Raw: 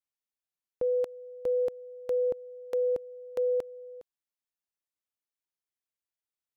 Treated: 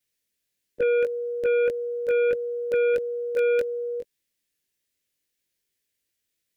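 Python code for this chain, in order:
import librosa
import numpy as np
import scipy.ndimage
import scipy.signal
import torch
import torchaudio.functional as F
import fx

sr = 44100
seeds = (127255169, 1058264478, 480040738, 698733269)

p1 = fx.frame_reverse(x, sr, frame_ms=41.0)
p2 = fx.fold_sine(p1, sr, drive_db=9, ceiling_db=-25.0)
p3 = p1 + F.gain(torch.from_numpy(p2), -8.5).numpy()
p4 = fx.band_shelf(p3, sr, hz=950.0, db=-12.5, octaves=1.3)
y = F.gain(torch.from_numpy(p4), 9.0).numpy()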